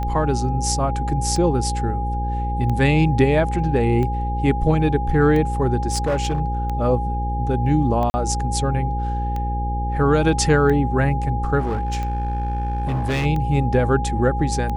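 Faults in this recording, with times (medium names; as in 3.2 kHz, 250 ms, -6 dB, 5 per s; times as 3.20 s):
buzz 60 Hz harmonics 9 -24 dBFS
tick 45 rpm -16 dBFS
whine 820 Hz -26 dBFS
5.90–6.41 s: clipped -16 dBFS
8.10–8.14 s: dropout 40 ms
11.59–13.26 s: clipped -18.5 dBFS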